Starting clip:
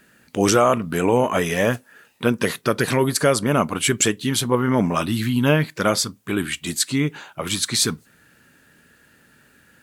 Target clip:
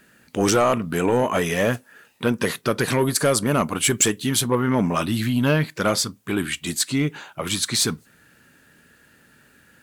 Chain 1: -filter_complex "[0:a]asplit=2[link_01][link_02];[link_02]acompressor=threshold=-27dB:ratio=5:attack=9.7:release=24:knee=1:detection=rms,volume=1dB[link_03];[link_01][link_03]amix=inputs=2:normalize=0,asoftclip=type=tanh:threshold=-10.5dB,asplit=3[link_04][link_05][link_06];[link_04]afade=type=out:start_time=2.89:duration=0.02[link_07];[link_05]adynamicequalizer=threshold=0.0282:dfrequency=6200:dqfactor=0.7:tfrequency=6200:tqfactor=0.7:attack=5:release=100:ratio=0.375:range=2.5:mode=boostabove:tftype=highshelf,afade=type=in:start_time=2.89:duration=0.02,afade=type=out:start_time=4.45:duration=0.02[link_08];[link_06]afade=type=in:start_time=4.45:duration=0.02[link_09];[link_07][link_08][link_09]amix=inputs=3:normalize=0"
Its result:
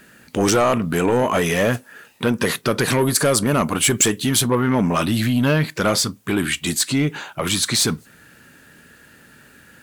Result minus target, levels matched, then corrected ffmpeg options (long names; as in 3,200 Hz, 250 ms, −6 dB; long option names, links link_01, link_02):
downward compressor: peak gain reduction +12.5 dB
-filter_complex "[0:a]asoftclip=type=tanh:threshold=-10.5dB,asplit=3[link_01][link_02][link_03];[link_01]afade=type=out:start_time=2.89:duration=0.02[link_04];[link_02]adynamicequalizer=threshold=0.0282:dfrequency=6200:dqfactor=0.7:tfrequency=6200:tqfactor=0.7:attack=5:release=100:ratio=0.375:range=2.5:mode=boostabove:tftype=highshelf,afade=type=in:start_time=2.89:duration=0.02,afade=type=out:start_time=4.45:duration=0.02[link_05];[link_03]afade=type=in:start_time=4.45:duration=0.02[link_06];[link_04][link_05][link_06]amix=inputs=3:normalize=0"